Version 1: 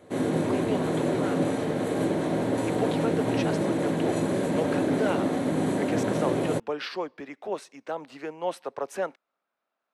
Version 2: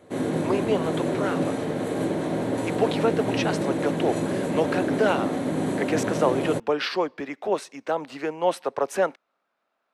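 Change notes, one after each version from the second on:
speech +7.0 dB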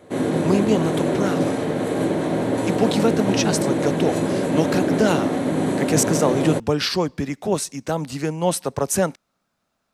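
speech: remove three-way crossover with the lows and the highs turned down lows −24 dB, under 320 Hz, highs −18 dB, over 3,400 Hz
background +4.5 dB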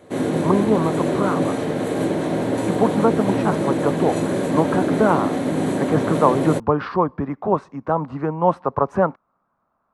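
speech: add low-pass with resonance 1,100 Hz, resonance Q 3.4

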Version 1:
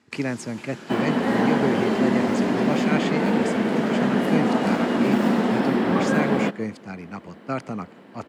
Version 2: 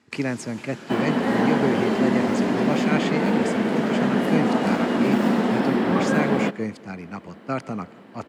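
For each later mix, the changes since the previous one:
speech: send +8.0 dB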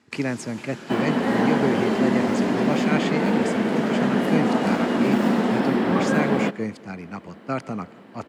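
first sound: send +11.0 dB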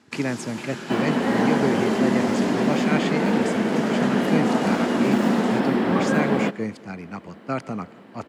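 first sound +5.5 dB

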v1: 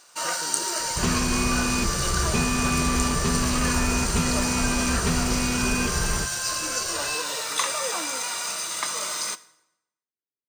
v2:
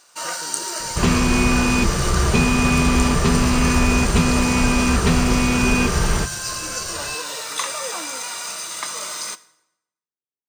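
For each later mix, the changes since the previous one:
second sound +7.5 dB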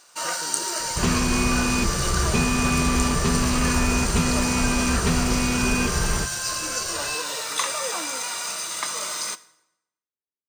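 second sound −5.0 dB

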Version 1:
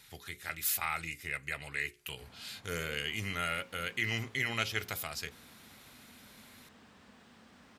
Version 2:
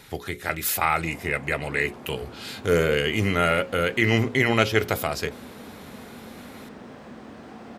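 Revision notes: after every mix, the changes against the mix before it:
background: entry −1.15 s
master: remove guitar amp tone stack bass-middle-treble 5-5-5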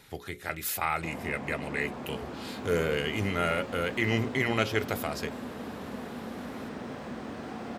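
speech −7.0 dB
reverb: on, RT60 0.50 s

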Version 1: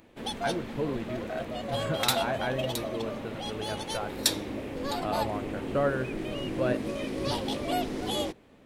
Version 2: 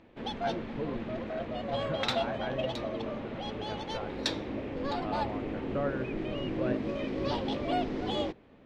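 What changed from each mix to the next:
speech −5.5 dB
master: add high-frequency loss of the air 190 metres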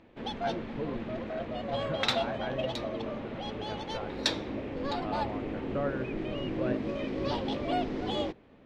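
second sound +3.5 dB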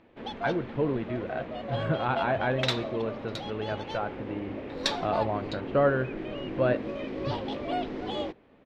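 speech +10.0 dB
first sound: add bass and treble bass −4 dB, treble −5 dB
second sound: entry +0.60 s

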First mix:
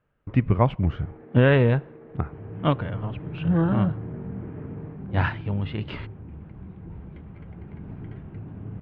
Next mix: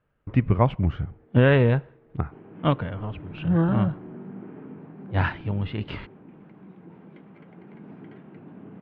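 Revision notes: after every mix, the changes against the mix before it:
first sound −12.0 dB
second sound: add high-pass filter 190 Hz 24 dB per octave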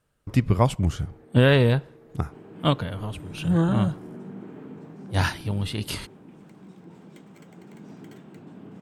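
first sound +6.5 dB
master: remove low-pass filter 2,600 Hz 24 dB per octave

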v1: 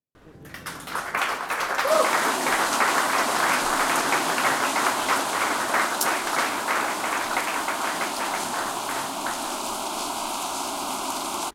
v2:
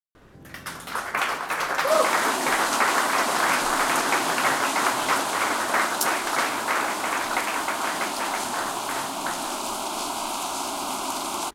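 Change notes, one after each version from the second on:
speech: entry +0.90 s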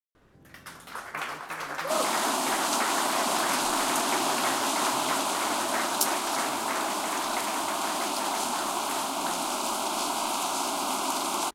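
first sound −9.0 dB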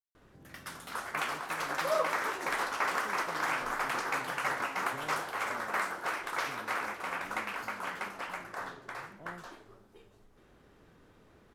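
second sound: muted

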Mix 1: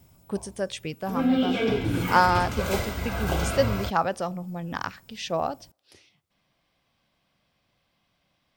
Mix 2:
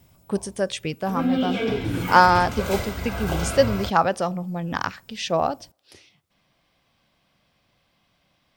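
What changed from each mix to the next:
speech +5.0 dB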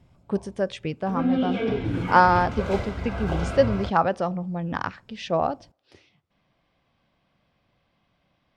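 master: add head-to-tape spacing loss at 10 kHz 20 dB

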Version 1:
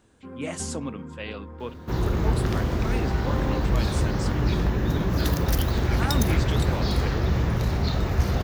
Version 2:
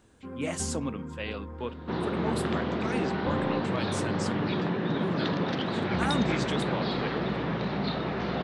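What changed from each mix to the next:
second sound: add elliptic band-pass filter 170–3,800 Hz, stop band 50 dB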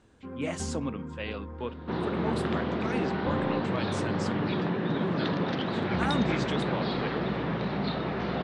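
master: add high-frequency loss of the air 62 metres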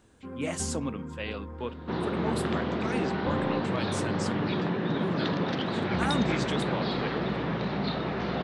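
master: remove high-frequency loss of the air 62 metres

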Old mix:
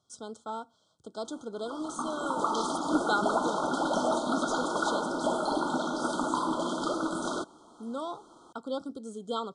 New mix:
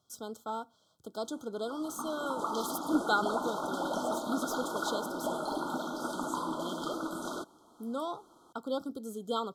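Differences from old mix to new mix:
background −5.5 dB
master: remove linear-phase brick-wall low-pass 10,000 Hz

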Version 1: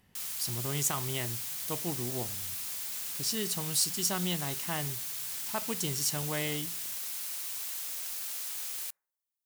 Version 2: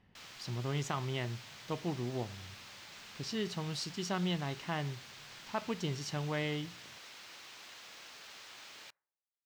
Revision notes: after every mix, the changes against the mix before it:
master: add high-frequency loss of the air 200 metres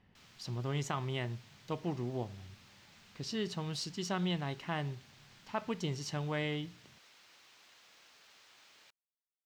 background −8.5 dB
reverb: off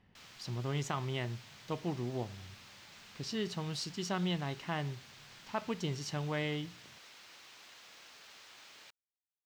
background +6.0 dB

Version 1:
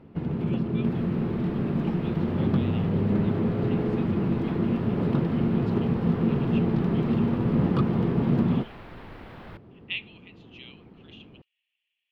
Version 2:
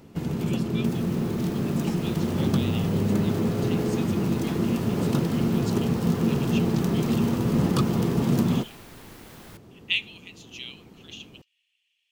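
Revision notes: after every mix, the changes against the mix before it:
second sound −6.5 dB
master: remove high-frequency loss of the air 430 metres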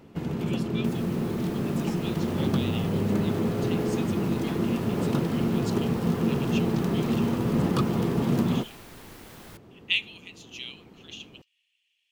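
first sound: add bass and treble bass −3 dB, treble −7 dB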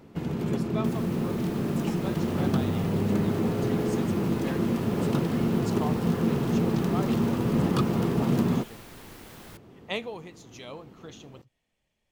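speech: remove high-pass with resonance 2,800 Hz, resonance Q 5.7

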